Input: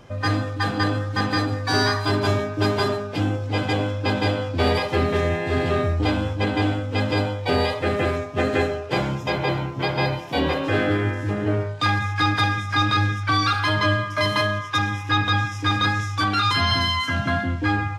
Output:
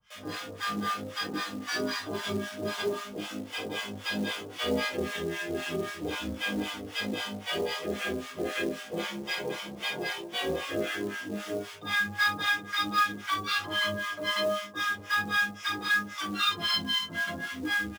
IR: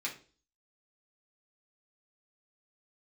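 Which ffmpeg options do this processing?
-filter_complex "[0:a]acrossover=split=140|1100[s0][s1][s2];[s1]acrusher=bits=5:mix=0:aa=0.000001[s3];[s0][s3][s2]amix=inputs=3:normalize=0,asplit=2[s4][s5];[s5]adelay=50,volume=0.501[s6];[s4][s6]amix=inputs=2:normalize=0,flanger=delay=16:depth=2.3:speed=0.62[s7];[1:a]atrim=start_sample=2205,asetrate=61740,aresample=44100[s8];[s7][s8]afir=irnorm=-1:irlink=0,acrossover=split=770[s9][s10];[s9]aeval=exprs='val(0)*(1-1/2+1/2*cos(2*PI*3.8*n/s))':c=same[s11];[s10]aeval=exprs='val(0)*(1-1/2-1/2*cos(2*PI*3.8*n/s))':c=same[s12];[s11][s12]amix=inputs=2:normalize=0,acrusher=bits=5:mode=log:mix=0:aa=0.000001"

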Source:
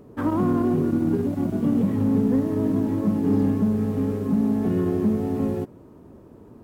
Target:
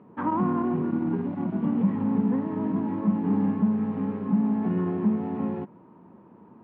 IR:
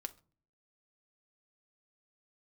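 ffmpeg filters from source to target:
-af "highpass=190,equalizer=f=190:t=q:w=4:g=7,equalizer=f=280:t=q:w=4:g=-4,equalizer=f=420:t=q:w=4:g=-6,equalizer=f=600:t=q:w=4:g=-5,equalizer=f=940:t=q:w=4:g=8,lowpass=f=2700:w=0.5412,lowpass=f=2700:w=1.3066,volume=0.794"

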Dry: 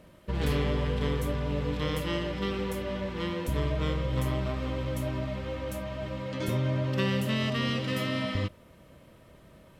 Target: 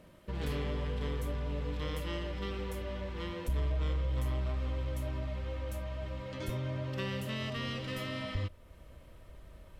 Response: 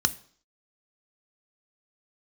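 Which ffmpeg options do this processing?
-filter_complex "[0:a]asubboost=boost=8:cutoff=58,asplit=2[s0][s1];[s1]acompressor=threshold=0.00891:ratio=6,volume=0.794[s2];[s0][s2]amix=inputs=2:normalize=0,asoftclip=type=tanh:threshold=0.178,volume=0.398"

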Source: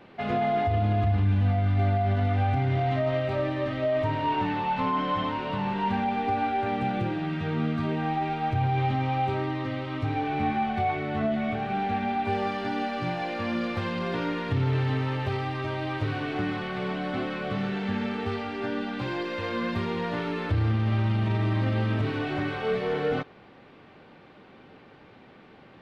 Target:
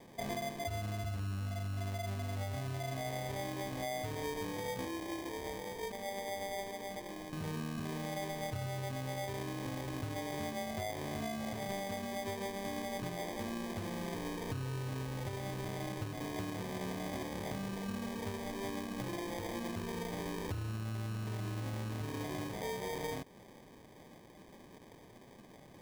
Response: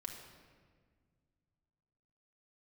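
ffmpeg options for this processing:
-filter_complex "[0:a]acompressor=threshold=0.0251:ratio=6,asettb=1/sr,asplit=3[s0][s1][s2];[s0]atrim=end=4.854[s3];[s1]atrim=start=4.85:end=7.33,asetpts=PTS-STARTPTS,afade=t=in:d=0.004:c=qsin,afade=t=out:st=2.476:d=0.004:c=qsin,highpass=410[s4];[s2]atrim=start=7.326[s5];[s3][s4]acrossfade=d=0.004:c1=hsin:c2=qsin[s6];[s6][s5]acrossfade=d=0.004:c1=qsin:c2=hsin,acrusher=samples=32:mix=1:aa=0.000001,volume=0.596"

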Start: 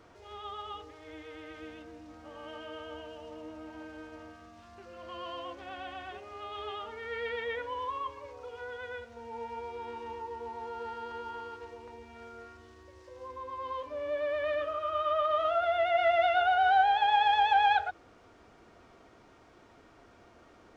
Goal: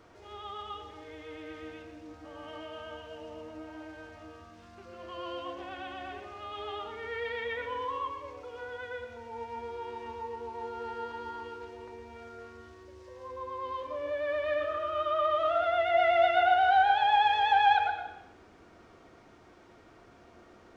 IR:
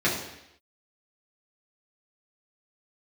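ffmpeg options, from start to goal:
-filter_complex "[0:a]asplit=2[s0][s1];[1:a]atrim=start_sample=2205,adelay=105[s2];[s1][s2]afir=irnorm=-1:irlink=0,volume=0.112[s3];[s0][s3]amix=inputs=2:normalize=0"

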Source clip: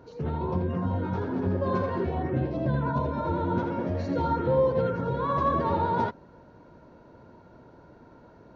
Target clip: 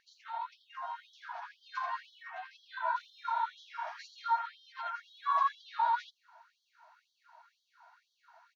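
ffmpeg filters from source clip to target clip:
-filter_complex "[0:a]asplit=3[s0][s1][s2];[s0]afade=t=out:st=2.69:d=0.02[s3];[s1]asplit=2[s4][s5];[s5]adelay=32,volume=0.794[s6];[s4][s6]amix=inputs=2:normalize=0,afade=t=in:st=2.69:d=0.02,afade=t=out:st=4.02:d=0.02[s7];[s2]afade=t=in:st=4.02:d=0.02[s8];[s3][s7][s8]amix=inputs=3:normalize=0,afftfilt=real='re*gte(b*sr/1024,630*pow(3100/630,0.5+0.5*sin(2*PI*2*pts/sr)))':imag='im*gte(b*sr/1024,630*pow(3100/630,0.5+0.5*sin(2*PI*2*pts/sr)))':win_size=1024:overlap=0.75"

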